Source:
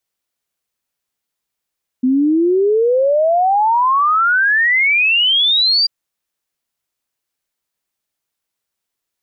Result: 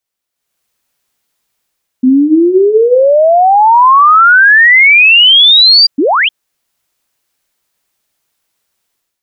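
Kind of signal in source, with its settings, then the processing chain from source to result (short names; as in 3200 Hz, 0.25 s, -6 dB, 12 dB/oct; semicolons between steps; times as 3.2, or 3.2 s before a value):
log sweep 250 Hz -> 4800 Hz 3.84 s -10.5 dBFS
notches 60/120/180/240/300/360/420/480 Hz; AGC gain up to 12.5 dB; painted sound rise, 5.98–6.29, 250–3400 Hz -9 dBFS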